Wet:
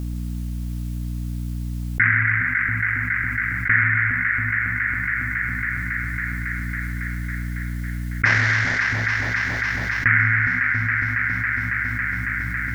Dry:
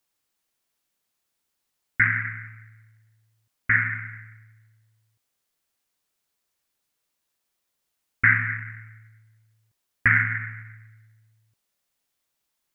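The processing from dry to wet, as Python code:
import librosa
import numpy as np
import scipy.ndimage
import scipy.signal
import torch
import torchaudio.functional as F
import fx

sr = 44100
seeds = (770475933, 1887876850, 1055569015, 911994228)

y = fx.cvsd(x, sr, bps=32000, at=(8.25, 8.83))
y = fx.add_hum(y, sr, base_hz=60, snr_db=24)
y = fx.echo_alternate(y, sr, ms=138, hz=870.0, feedback_pct=87, wet_db=-11.5)
y = fx.env_flatten(y, sr, amount_pct=70)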